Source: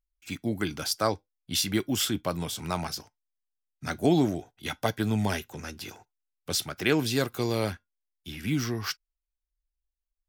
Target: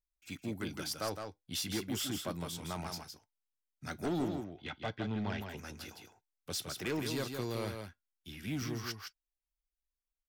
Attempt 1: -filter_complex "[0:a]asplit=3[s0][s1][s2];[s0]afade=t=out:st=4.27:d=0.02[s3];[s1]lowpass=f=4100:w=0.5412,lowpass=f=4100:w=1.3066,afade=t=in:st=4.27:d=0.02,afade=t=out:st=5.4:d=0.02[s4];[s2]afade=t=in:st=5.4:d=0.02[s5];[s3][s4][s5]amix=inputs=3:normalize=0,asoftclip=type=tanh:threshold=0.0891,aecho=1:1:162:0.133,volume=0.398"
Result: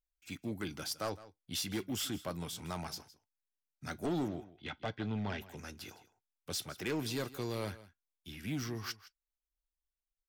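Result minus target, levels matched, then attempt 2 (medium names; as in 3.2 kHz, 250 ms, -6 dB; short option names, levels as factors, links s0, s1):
echo-to-direct -11.5 dB
-filter_complex "[0:a]asplit=3[s0][s1][s2];[s0]afade=t=out:st=4.27:d=0.02[s3];[s1]lowpass=f=4100:w=0.5412,lowpass=f=4100:w=1.3066,afade=t=in:st=4.27:d=0.02,afade=t=out:st=5.4:d=0.02[s4];[s2]afade=t=in:st=5.4:d=0.02[s5];[s3][s4][s5]amix=inputs=3:normalize=0,asoftclip=type=tanh:threshold=0.0891,aecho=1:1:162:0.501,volume=0.398"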